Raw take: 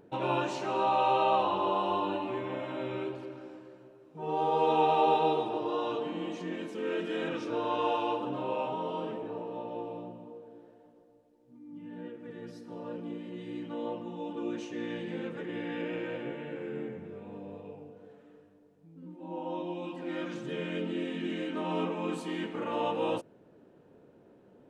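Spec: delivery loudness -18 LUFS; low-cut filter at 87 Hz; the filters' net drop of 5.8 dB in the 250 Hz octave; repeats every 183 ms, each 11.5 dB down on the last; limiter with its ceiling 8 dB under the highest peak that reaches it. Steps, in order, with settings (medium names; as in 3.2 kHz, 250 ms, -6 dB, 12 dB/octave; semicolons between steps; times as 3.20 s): high-pass 87 Hz; peaking EQ 250 Hz -8.5 dB; peak limiter -24 dBFS; feedback delay 183 ms, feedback 27%, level -11.5 dB; trim +18 dB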